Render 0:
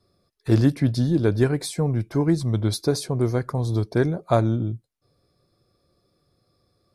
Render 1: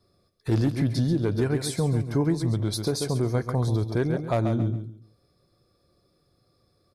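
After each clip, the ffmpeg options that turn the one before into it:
ffmpeg -i in.wav -af "asoftclip=type=hard:threshold=-10.5dB,aecho=1:1:137|274|411:0.316|0.0822|0.0214,alimiter=limit=-15.5dB:level=0:latency=1:release=135" out.wav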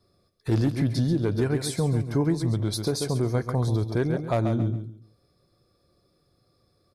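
ffmpeg -i in.wav -af anull out.wav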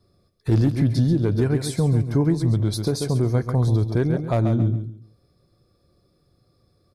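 ffmpeg -i in.wav -af "lowshelf=frequency=300:gain=6.5" out.wav

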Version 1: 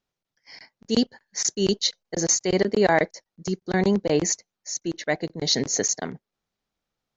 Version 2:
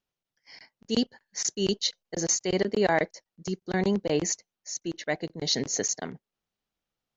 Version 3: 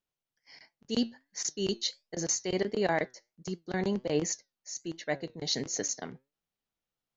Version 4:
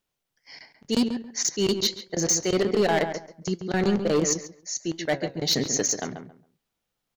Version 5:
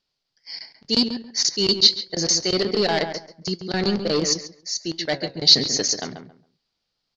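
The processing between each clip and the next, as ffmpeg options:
ffmpeg -i in.wav -af "equalizer=frequency=2900:width_type=o:width=0.31:gain=4,volume=-4.5dB" out.wav
ffmpeg -i in.wav -af "flanger=delay=5.7:depth=3.1:regen=82:speed=1.4:shape=triangular" out.wav
ffmpeg -i in.wav -filter_complex "[0:a]asoftclip=type=hard:threshold=-25.5dB,asplit=2[link_01][link_02];[link_02]adelay=137,lowpass=frequency=1700:poles=1,volume=-7.5dB,asplit=2[link_03][link_04];[link_04]adelay=137,lowpass=frequency=1700:poles=1,volume=0.22,asplit=2[link_05][link_06];[link_06]adelay=137,lowpass=frequency=1700:poles=1,volume=0.22[link_07];[link_03][link_05][link_07]amix=inputs=3:normalize=0[link_08];[link_01][link_08]amix=inputs=2:normalize=0,volume=8.5dB" out.wav
ffmpeg -i in.wav -af "lowpass=frequency=4700:width_type=q:width=6" out.wav

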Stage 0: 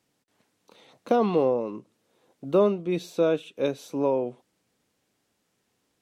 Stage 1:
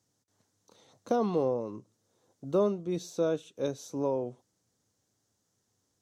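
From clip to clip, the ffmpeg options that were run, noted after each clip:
ffmpeg -i in.wav -af "equalizer=frequency=100:width_type=o:width=0.67:gain=12,equalizer=frequency=2500:width_type=o:width=0.67:gain=-9,equalizer=frequency=6300:width_type=o:width=0.67:gain=10,volume=-6dB" out.wav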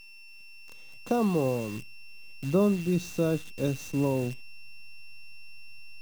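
ffmpeg -i in.wav -af "aeval=exprs='val(0)+0.00562*sin(2*PI*2700*n/s)':channel_layout=same,acrusher=bits=8:dc=4:mix=0:aa=0.000001,asubboost=boost=5:cutoff=240,volume=1.5dB" out.wav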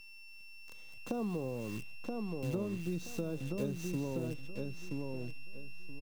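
ffmpeg -i in.wav -filter_complex "[0:a]acrossover=split=550[link_01][link_02];[link_02]alimiter=level_in=6dB:limit=-24dB:level=0:latency=1:release=232,volume=-6dB[link_03];[link_01][link_03]amix=inputs=2:normalize=0,acompressor=threshold=-30dB:ratio=6,asplit=2[link_04][link_05];[link_05]adelay=976,lowpass=frequency=3800:poles=1,volume=-3dB,asplit=2[link_06][link_07];[link_07]adelay=976,lowpass=frequency=3800:poles=1,volume=0.23,asplit=2[link_08][link_09];[link_09]adelay=976,lowpass=frequency=3800:poles=1,volume=0.23[link_10];[link_04][link_06][link_08][link_10]amix=inputs=4:normalize=0,volume=-3.5dB" out.wav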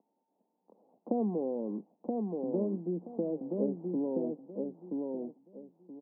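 ffmpeg -i in.wav -af "asuperpass=centerf=410:order=12:qfactor=0.6,volume=6dB" out.wav

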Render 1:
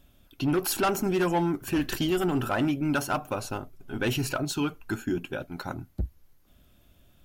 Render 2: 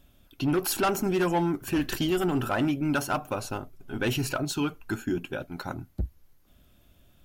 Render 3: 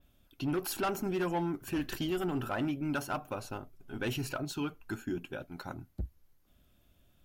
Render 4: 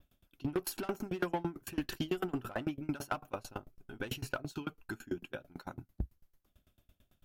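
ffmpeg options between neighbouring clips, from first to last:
ffmpeg -i in.wav -af anull out.wav
ffmpeg -i in.wav -af "adynamicequalizer=threshold=0.00282:dfrequency=8100:dqfactor=0.79:tfrequency=8100:tqfactor=0.79:attack=5:release=100:ratio=0.375:range=2.5:mode=cutabove:tftype=bell,volume=-7dB" out.wav
ffmpeg -i in.wav -af "aeval=exprs='val(0)*pow(10,-27*if(lt(mod(9*n/s,1),2*abs(9)/1000),1-mod(9*n/s,1)/(2*abs(9)/1000),(mod(9*n/s,1)-2*abs(9)/1000)/(1-2*abs(9)/1000))/20)':channel_layout=same,volume=4dB" out.wav

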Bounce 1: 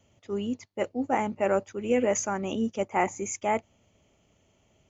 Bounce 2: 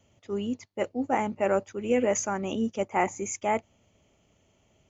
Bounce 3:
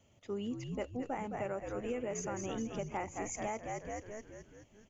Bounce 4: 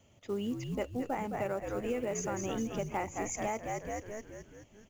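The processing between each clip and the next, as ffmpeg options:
ffmpeg -i in.wav -af anull out.wav
ffmpeg -i in.wav -filter_complex "[0:a]asplit=2[link_01][link_02];[link_02]asplit=7[link_03][link_04][link_05][link_06][link_07][link_08][link_09];[link_03]adelay=213,afreqshift=-71,volume=-7dB[link_10];[link_04]adelay=426,afreqshift=-142,volume=-12.2dB[link_11];[link_05]adelay=639,afreqshift=-213,volume=-17.4dB[link_12];[link_06]adelay=852,afreqshift=-284,volume=-22.6dB[link_13];[link_07]adelay=1065,afreqshift=-355,volume=-27.8dB[link_14];[link_08]adelay=1278,afreqshift=-426,volume=-33dB[link_15];[link_09]adelay=1491,afreqshift=-497,volume=-38.2dB[link_16];[link_10][link_11][link_12][link_13][link_14][link_15][link_16]amix=inputs=7:normalize=0[link_17];[link_01][link_17]amix=inputs=2:normalize=0,acompressor=threshold=-32dB:ratio=6,volume=-3dB" out.wav
ffmpeg -i in.wav -af "acrusher=bits=7:mode=log:mix=0:aa=0.000001,volume=3.5dB" out.wav

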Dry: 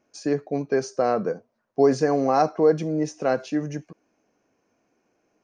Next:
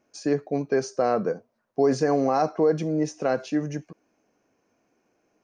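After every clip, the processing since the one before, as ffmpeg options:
ffmpeg -i in.wav -af "alimiter=limit=-12dB:level=0:latency=1:release=54" out.wav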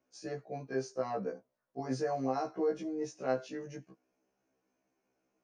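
ffmpeg -i in.wav -af "afftfilt=real='re*1.73*eq(mod(b,3),0)':imag='im*1.73*eq(mod(b,3),0)':win_size=2048:overlap=0.75,volume=-8.5dB" out.wav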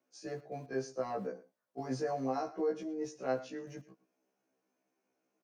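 ffmpeg -i in.wav -filter_complex "[0:a]acrossover=split=130|1100|2300[link_01][link_02][link_03][link_04];[link_01]aeval=exprs='val(0)*gte(abs(val(0)),0.00133)':channel_layout=same[link_05];[link_05][link_02][link_03][link_04]amix=inputs=4:normalize=0,aecho=1:1:110:0.126,volume=-1.5dB" out.wav

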